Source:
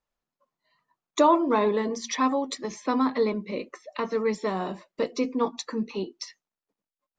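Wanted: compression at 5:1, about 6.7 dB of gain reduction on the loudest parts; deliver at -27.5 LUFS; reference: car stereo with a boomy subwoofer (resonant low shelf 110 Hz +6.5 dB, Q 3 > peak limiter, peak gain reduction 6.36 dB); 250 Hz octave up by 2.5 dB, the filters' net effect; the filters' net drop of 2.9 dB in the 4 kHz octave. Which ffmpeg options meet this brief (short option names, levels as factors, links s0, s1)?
-af "equalizer=f=250:t=o:g=4.5,equalizer=f=4000:t=o:g=-3.5,acompressor=threshold=0.0891:ratio=5,lowshelf=f=110:t=q:w=3:g=6.5,volume=1.5,alimiter=limit=0.15:level=0:latency=1"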